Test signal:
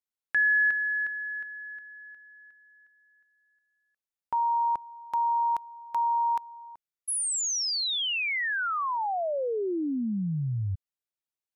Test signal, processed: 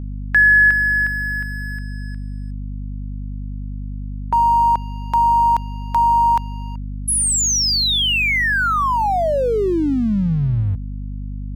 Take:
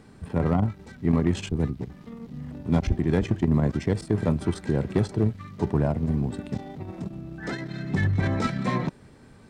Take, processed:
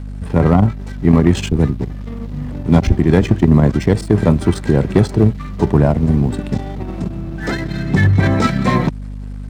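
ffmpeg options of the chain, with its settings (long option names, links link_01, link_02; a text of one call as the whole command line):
ffmpeg -i in.wav -af "aeval=exprs='sgn(val(0))*max(abs(val(0))-0.00282,0)':channel_layout=same,acontrast=38,aeval=exprs='val(0)+0.0251*(sin(2*PI*50*n/s)+sin(2*PI*2*50*n/s)/2+sin(2*PI*3*50*n/s)/3+sin(2*PI*4*50*n/s)/4+sin(2*PI*5*50*n/s)/5)':channel_layout=same,volume=6dB" out.wav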